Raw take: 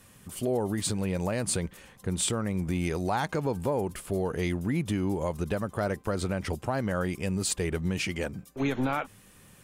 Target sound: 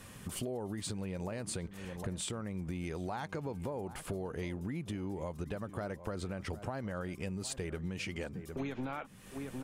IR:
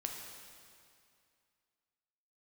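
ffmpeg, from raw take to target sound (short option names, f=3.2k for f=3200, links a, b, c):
-filter_complex "[0:a]highshelf=f=8.3k:g=-7,asplit=2[a][b];[b]adelay=758,volume=-17dB,highshelf=f=4k:g=-17.1[c];[a][c]amix=inputs=2:normalize=0,acompressor=threshold=-42dB:ratio=6,volume=5dB"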